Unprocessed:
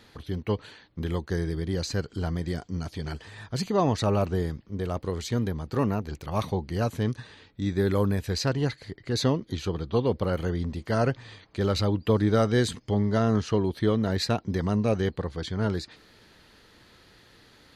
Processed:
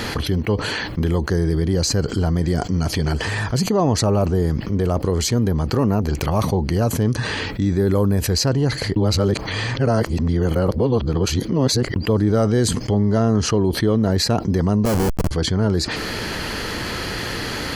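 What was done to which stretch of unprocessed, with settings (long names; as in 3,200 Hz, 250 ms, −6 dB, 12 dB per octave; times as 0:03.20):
0:08.96–0:11.96: reverse
0:14.85–0:15.31: comparator with hysteresis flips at −29.5 dBFS
whole clip: notch filter 3,700 Hz, Q 6.8; dynamic equaliser 2,300 Hz, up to −8 dB, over −47 dBFS, Q 0.79; envelope flattener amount 70%; level +3.5 dB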